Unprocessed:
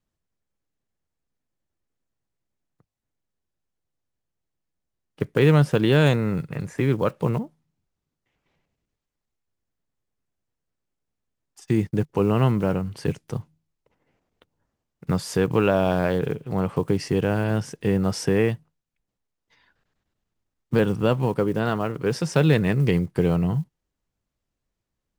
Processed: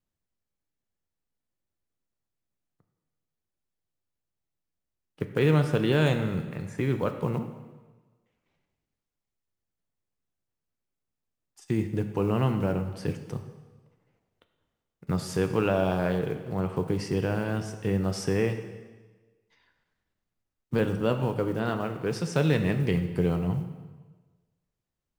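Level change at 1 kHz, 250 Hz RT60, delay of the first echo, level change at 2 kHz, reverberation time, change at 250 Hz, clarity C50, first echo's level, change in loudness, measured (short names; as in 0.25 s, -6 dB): -4.5 dB, 1.3 s, none, -4.5 dB, 1.3 s, -5.0 dB, 9.0 dB, none, -5.0 dB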